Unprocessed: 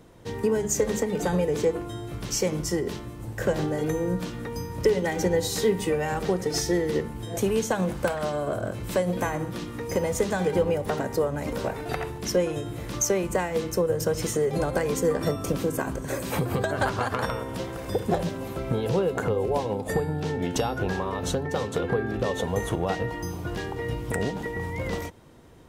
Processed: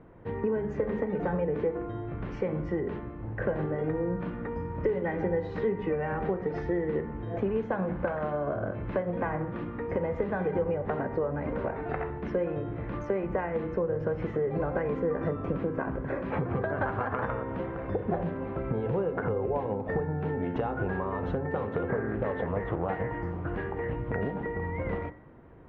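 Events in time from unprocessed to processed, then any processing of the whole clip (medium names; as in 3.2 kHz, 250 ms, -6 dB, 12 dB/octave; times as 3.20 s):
21.89–23.96 s: loudspeaker Doppler distortion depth 0.39 ms
whole clip: low-pass 2 kHz 24 dB/octave; de-hum 60.19 Hz, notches 38; compression 2:1, threshold -28 dBFS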